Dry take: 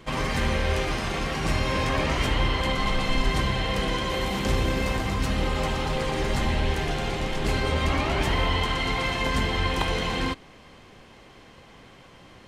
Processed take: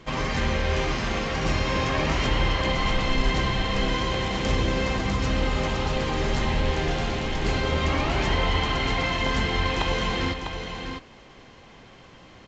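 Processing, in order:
single-tap delay 650 ms −7 dB
A-law companding 128 kbit/s 16,000 Hz

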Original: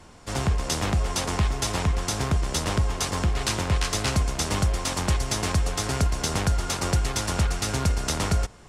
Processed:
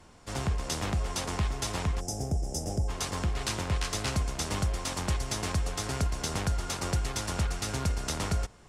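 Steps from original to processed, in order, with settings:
gain on a spectral selection 0:02.00–0:02.88, 880–4,800 Hz −20 dB
level −6 dB

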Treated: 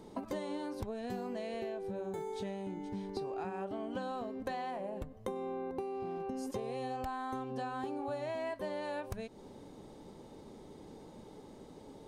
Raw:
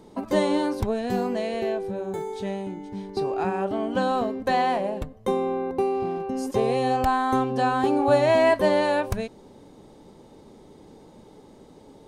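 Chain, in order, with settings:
0:04.70–0:05.36: dynamic equaliser 4,200 Hz, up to −6 dB, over −49 dBFS, Q 0.95
downward compressor 10 to 1, threshold −33 dBFS, peak gain reduction 18.5 dB
level −3 dB

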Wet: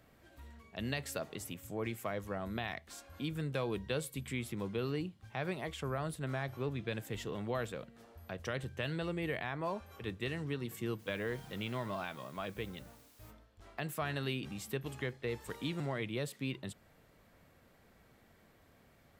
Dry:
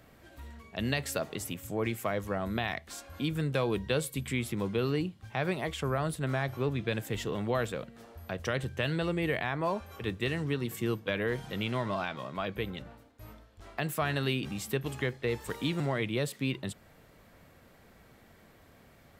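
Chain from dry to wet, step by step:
0:10.98–0:13.30: background noise white −58 dBFS
level −6.5 dB

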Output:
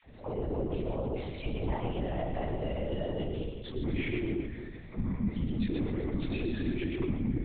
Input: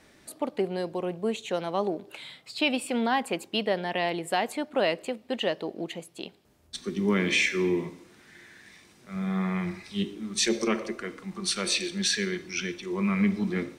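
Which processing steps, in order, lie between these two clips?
peak hold with a decay on every bin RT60 0.76 s
spectral tilt −3.5 dB per octave
harmonic and percussive parts rebalanced percussive −12 dB
brickwall limiter −20 dBFS, peak gain reduction 11 dB
downward compressor 10 to 1, threshold −34 dBFS, peak gain reduction 11.5 dB
all-pass dispersion lows, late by 133 ms, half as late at 650 Hz
phase-vocoder stretch with locked phases 0.54×
Butterworth band-reject 1,400 Hz, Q 3
echo with a time of its own for lows and highs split 360 Hz, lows 175 ms, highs 127 ms, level −5 dB
linear-prediction vocoder at 8 kHz whisper
level +4 dB

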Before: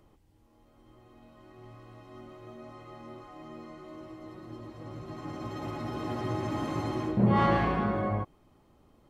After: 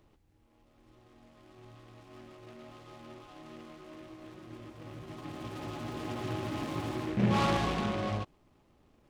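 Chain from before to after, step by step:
short delay modulated by noise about 1,700 Hz, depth 0.08 ms
level −3.5 dB

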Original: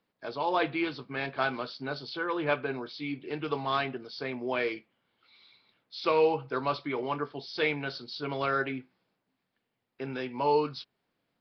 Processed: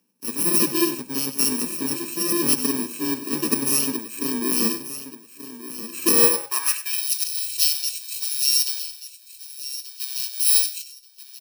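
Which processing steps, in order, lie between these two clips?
samples in bit-reversed order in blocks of 64 samples
repeating echo 1,183 ms, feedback 24%, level −13 dB
high-pass filter sweep 230 Hz → 3,900 Hz, 0:06.03–0:07.06
single-tap delay 96 ms −13 dB
level +7.5 dB

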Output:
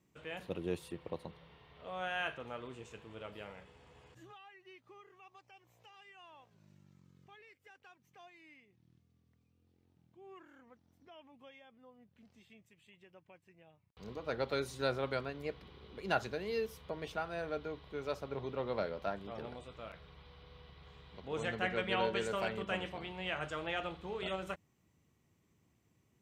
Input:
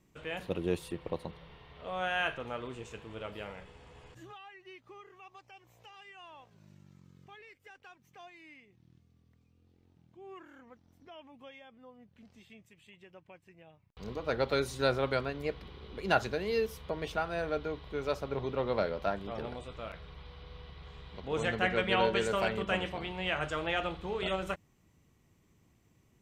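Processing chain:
high-pass filter 69 Hz
level −5.5 dB

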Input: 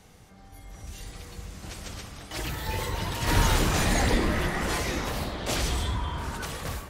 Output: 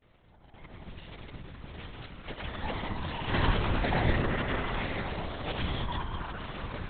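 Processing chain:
granular cloud 100 ms, grains 20 per second, pitch spread up and down by 0 semitones
in parallel at −4 dB: bit reduction 7 bits
on the sum: linear-prediction vocoder at 8 kHz whisper
level −6.5 dB

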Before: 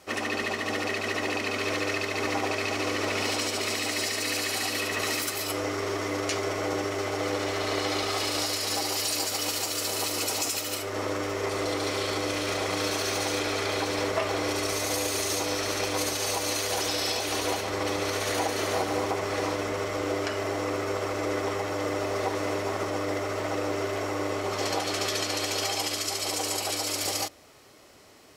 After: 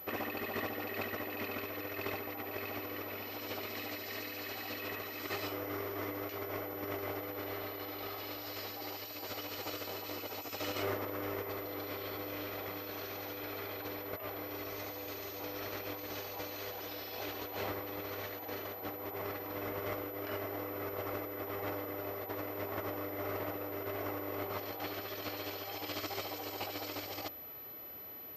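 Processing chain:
compressor whose output falls as the input rises −33 dBFS, ratio −0.5
high-shelf EQ 4,400 Hz −8 dB
switching amplifier with a slow clock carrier 12,000 Hz
level −5.5 dB

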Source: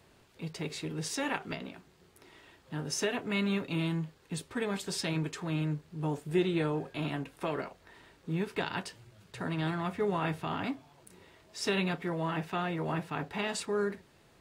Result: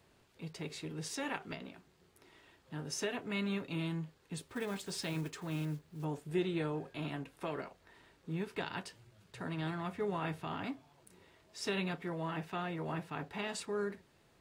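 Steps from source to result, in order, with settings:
0:04.42–0:06.06: one scale factor per block 5 bits
level −5.5 dB

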